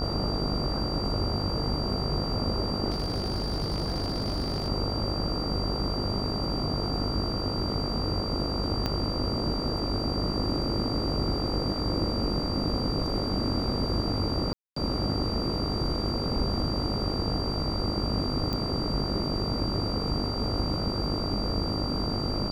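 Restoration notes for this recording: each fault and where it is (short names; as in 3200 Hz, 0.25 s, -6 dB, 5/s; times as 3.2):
buzz 50 Hz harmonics 28 -33 dBFS
tone 4700 Hz -34 dBFS
2.9–4.69 clipped -25 dBFS
8.86 pop -15 dBFS
14.53–14.76 gap 0.234 s
18.53 pop -18 dBFS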